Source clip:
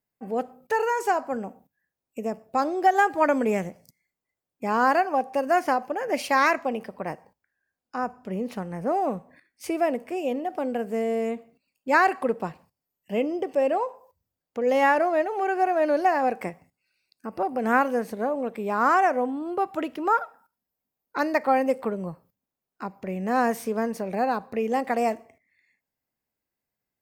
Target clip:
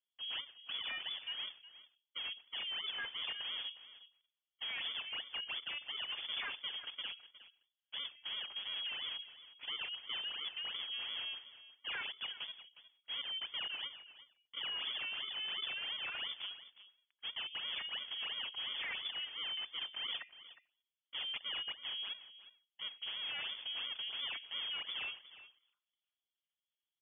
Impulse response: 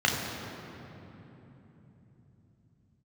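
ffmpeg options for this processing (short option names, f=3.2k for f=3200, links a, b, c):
-filter_complex "[0:a]equalizer=f=820:w=6.5:g=-11.5,bandreject=f=60:t=h:w=6,bandreject=f=120:t=h:w=6,bandreject=f=180:t=h:w=6,bandreject=f=240:t=h:w=6,aecho=1:1:5.6:0.72,acrossover=split=1800[a][b];[a]acompressor=threshold=-30dB:ratio=6[c];[b]aeval=exprs='sgn(val(0))*max(abs(val(0))-0.00596,0)':c=same[d];[c][d]amix=inputs=2:normalize=0,asetrate=50951,aresample=44100,atempo=0.865537,acrusher=samples=28:mix=1:aa=0.000001:lfo=1:lforange=44.8:lforate=2.9,volume=31dB,asoftclip=hard,volume=-31dB,aecho=1:1:361:0.168,lowpass=f=3k:t=q:w=0.5098,lowpass=f=3k:t=q:w=0.6013,lowpass=f=3k:t=q:w=0.9,lowpass=f=3k:t=q:w=2.563,afreqshift=-3500,volume=-7dB"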